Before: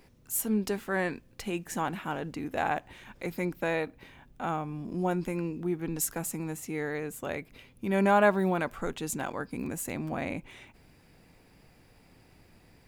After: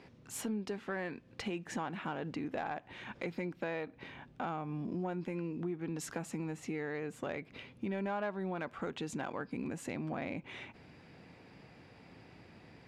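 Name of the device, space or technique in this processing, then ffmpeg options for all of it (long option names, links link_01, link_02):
AM radio: -af "highpass=100,lowpass=4200,acompressor=threshold=-39dB:ratio=5,asoftclip=type=tanh:threshold=-29.5dB,volume=4dB"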